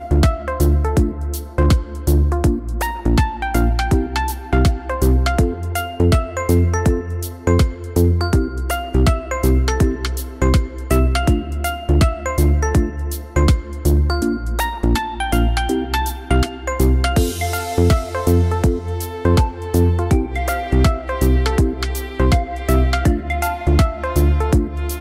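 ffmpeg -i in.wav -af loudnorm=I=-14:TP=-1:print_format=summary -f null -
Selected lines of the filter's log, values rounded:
Input Integrated:    -18.4 LUFS
Input True Peak:      -6.7 dBTP
Input LRA:             0.7 LU
Input Threshold:     -28.4 LUFS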